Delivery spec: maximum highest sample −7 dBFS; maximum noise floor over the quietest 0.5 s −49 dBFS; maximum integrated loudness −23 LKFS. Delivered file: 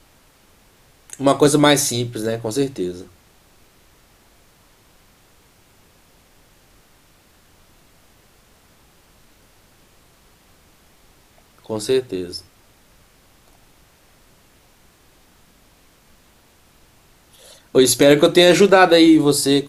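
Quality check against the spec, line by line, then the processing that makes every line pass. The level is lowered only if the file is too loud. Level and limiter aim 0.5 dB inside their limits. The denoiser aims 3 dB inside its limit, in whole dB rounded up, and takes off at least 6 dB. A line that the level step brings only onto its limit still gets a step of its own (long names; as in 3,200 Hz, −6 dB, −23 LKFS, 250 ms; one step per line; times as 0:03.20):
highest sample −1.5 dBFS: out of spec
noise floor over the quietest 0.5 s −54 dBFS: in spec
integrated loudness −15.5 LKFS: out of spec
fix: level −8 dB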